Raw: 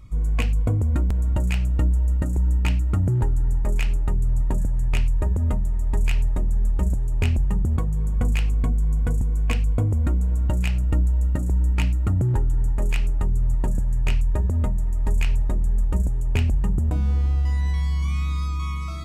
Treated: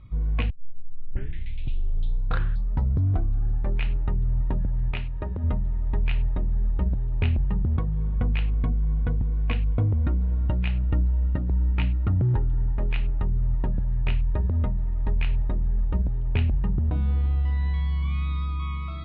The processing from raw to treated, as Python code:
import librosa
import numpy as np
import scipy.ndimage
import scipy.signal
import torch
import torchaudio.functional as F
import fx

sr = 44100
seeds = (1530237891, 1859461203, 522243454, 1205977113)

y = fx.low_shelf(x, sr, hz=140.0, db=-8.0, at=(4.91, 5.44))
y = fx.edit(y, sr, fx.tape_start(start_s=0.5, length_s=3.31), tone=tone)
y = scipy.signal.sosfilt(scipy.signal.ellip(4, 1.0, 60, 3800.0, 'lowpass', fs=sr, output='sos'), y)
y = fx.peak_eq(y, sr, hz=120.0, db=3.0, octaves=1.3)
y = y * 10.0 ** (-2.5 / 20.0)